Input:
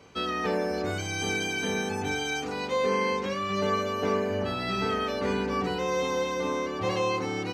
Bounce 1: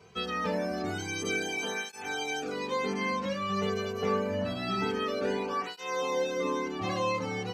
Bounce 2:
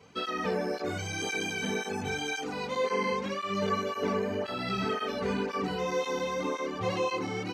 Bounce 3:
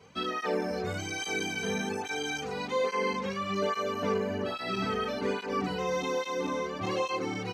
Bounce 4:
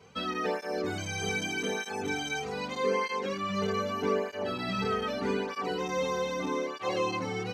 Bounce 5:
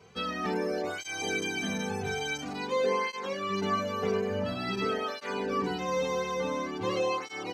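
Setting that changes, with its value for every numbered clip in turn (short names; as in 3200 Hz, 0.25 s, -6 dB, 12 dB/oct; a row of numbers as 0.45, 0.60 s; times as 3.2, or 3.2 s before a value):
tape flanging out of phase, nulls at: 0.26, 1.9, 1.2, 0.81, 0.48 Hz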